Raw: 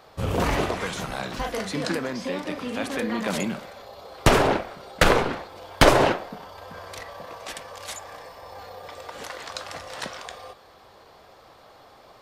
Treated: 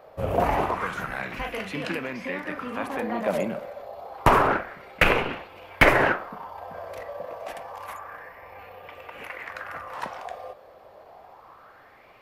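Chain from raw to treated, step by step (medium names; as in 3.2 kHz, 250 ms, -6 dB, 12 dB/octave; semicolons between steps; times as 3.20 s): high-order bell 5.5 kHz -9 dB, from 7.84 s -15.5 dB, from 9.93 s -8.5 dB; sweeping bell 0.28 Hz 570–2800 Hz +12 dB; trim -4 dB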